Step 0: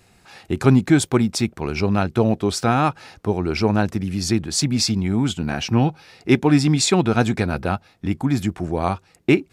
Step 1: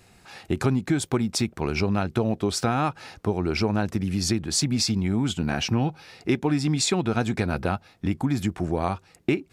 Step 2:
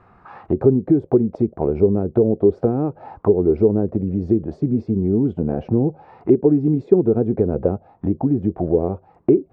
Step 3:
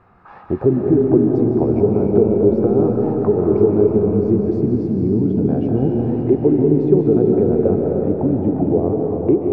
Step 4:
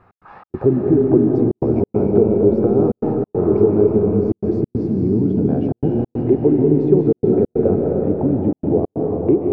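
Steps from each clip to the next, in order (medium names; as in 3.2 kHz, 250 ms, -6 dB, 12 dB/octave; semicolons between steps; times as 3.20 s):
compression 5:1, threshold -20 dBFS, peak gain reduction 10.5 dB
touch-sensitive low-pass 420–1200 Hz down, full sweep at -20 dBFS; trim +2.5 dB
reverberation RT60 4.4 s, pre-delay 110 ms, DRR -1.5 dB; trim -1 dB
trance gate "x.xx.xxxxxxxx" 139 bpm -60 dB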